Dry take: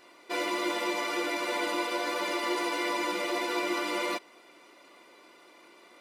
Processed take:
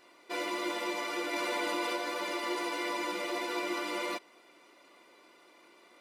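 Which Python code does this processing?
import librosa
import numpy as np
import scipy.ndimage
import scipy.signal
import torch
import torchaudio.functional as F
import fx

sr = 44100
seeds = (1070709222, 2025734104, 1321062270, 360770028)

y = fx.env_flatten(x, sr, amount_pct=70, at=(1.33, 1.96))
y = y * 10.0 ** (-4.0 / 20.0)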